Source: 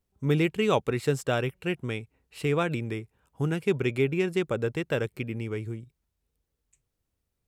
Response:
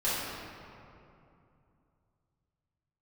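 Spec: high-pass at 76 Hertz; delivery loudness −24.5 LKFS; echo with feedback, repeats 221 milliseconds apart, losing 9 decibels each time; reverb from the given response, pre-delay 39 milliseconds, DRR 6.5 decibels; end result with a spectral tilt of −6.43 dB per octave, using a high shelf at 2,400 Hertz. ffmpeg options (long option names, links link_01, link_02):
-filter_complex "[0:a]highpass=76,highshelf=frequency=2400:gain=-5.5,aecho=1:1:221|442|663|884:0.355|0.124|0.0435|0.0152,asplit=2[link_01][link_02];[1:a]atrim=start_sample=2205,adelay=39[link_03];[link_02][link_03]afir=irnorm=-1:irlink=0,volume=-17dB[link_04];[link_01][link_04]amix=inputs=2:normalize=0,volume=3.5dB"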